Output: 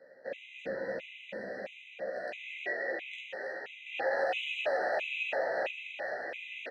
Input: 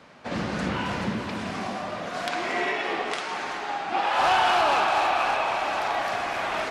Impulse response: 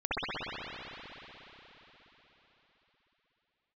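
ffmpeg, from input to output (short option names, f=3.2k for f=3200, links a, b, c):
-filter_complex "[0:a]aeval=exprs='0.266*(cos(1*acos(clip(val(0)/0.266,-1,1)))-cos(1*PI/2))+0.0237*(cos(5*acos(clip(val(0)/0.266,-1,1)))-cos(5*PI/2))+0.0211*(cos(8*acos(clip(val(0)/0.266,-1,1)))-cos(8*PI/2))':c=same,asplit=3[a][b][c];[a]bandpass=f=530:t=q:w=8,volume=0dB[d];[b]bandpass=f=1.84k:t=q:w=8,volume=-6dB[e];[c]bandpass=f=2.48k:t=q:w=8,volume=-9dB[f];[d][e][f]amix=inputs=3:normalize=0,asplit=2[g][h];[h]adelay=15,volume=-3.5dB[i];[g][i]amix=inputs=2:normalize=0,asplit=2[j][k];[k]aecho=0:1:311:0.422[l];[j][l]amix=inputs=2:normalize=0,asettb=1/sr,asplit=3[m][n][o];[m]atrim=end=3.864[p];[n]atrim=start=3.86:end=5.71,asetpts=PTS-STARTPTS,afade=t=in:d=0.004:c=qsin,afade=t=out:st=1.846:d=0.004:c=qsin,acontrast=33[q];[o]atrim=start=5.706[r];[p][q]acrossfade=d=0.004:c1=hsin:c2=qsin[s];[s][r]acrossfade=d=0.004:c1=qsin:c2=hsin,alimiter=limit=-20.5dB:level=0:latency=1:release=141,afftfilt=real='re*gt(sin(2*PI*1.5*pts/sr)*(1-2*mod(floor(b*sr/1024/2000),2)),0)':imag='im*gt(sin(2*PI*1.5*pts/sr)*(1-2*mod(floor(b*sr/1024/2000),2)),0)':win_size=1024:overlap=0.75"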